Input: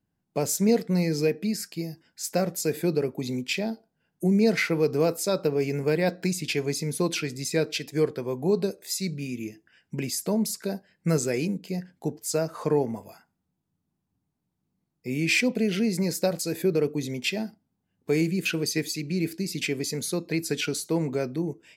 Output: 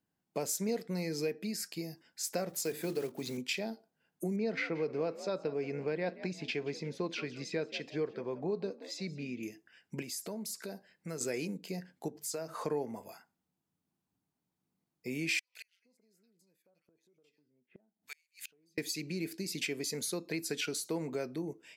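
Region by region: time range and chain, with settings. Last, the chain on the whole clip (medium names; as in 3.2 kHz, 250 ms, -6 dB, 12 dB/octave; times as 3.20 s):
2.49–3.38 s: block-companded coder 5-bit + hum notches 50/100/150/200/250/300/350 Hz
4.36–9.43 s: distance through air 190 m + frequency-shifting echo 178 ms, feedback 31%, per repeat +62 Hz, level -18 dB
10.02–11.21 s: compression 2:1, threshold -39 dBFS + short-mantissa float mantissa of 8-bit
12.08–12.54 s: hum notches 50/100/150/200 Hz + compression 2:1, threshold -35 dBFS
15.39–18.78 s: bands offset in time highs, lows 430 ms, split 1.5 kHz + compression, threshold -26 dBFS + inverted gate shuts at -30 dBFS, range -37 dB
whole clip: bass shelf 230 Hz -5.5 dB; compression 2:1, threshold -34 dBFS; bass shelf 93 Hz -11 dB; trim -1.5 dB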